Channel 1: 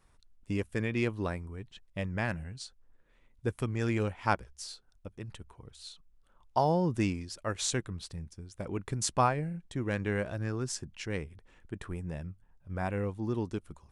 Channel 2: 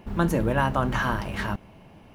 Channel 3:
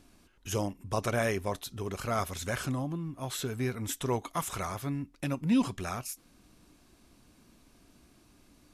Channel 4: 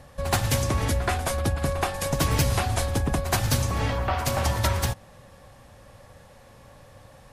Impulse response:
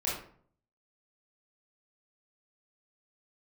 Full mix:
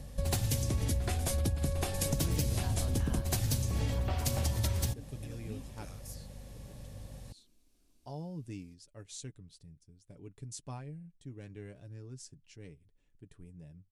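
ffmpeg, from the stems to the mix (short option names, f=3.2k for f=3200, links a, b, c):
-filter_complex "[0:a]aecho=1:1:7:0.47,adelay=1500,volume=-12dB[a];[1:a]adelay=2050,volume=2dB[b];[2:a]equalizer=f=140:w=1.1:g=-12.5,acompressor=threshold=-35dB:ratio=6,volume=-8dB,asplit=2[c][d];[3:a]aeval=exprs='val(0)+0.00316*(sin(2*PI*50*n/s)+sin(2*PI*2*50*n/s)/2+sin(2*PI*3*50*n/s)/3+sin(2*PI*4*50*n/s)/4+sin(2*PI*5*50*n/s)/5)':c=same,volume=2.5dB[e];[d]apad=whole_len=185095[f];[b][f]sidechaincompress=threshold=-54dB:ratio=8:attack=41:release=340[g];[a][g][c][e]amix=inputs=4:normalize=0,equalizer=f=1.2k:t=o:w=2.2:g=-14.5,acompressor=threshold=-28dB:ratio=6"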